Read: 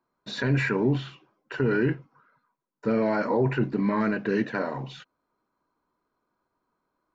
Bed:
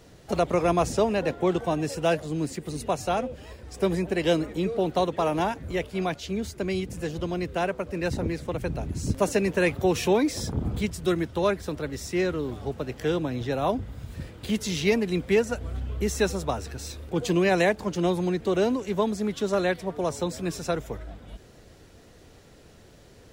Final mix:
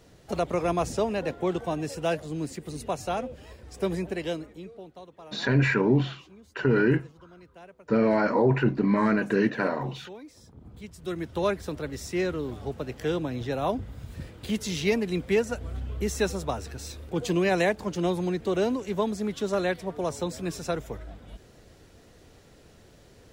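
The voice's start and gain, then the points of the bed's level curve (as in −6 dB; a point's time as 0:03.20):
5.05 s, +2.0 dB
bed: 0:04.06 −3.5 dB
0:04.97 −22 dB
0:10.56 −22 dB
0:11.36 −2 dB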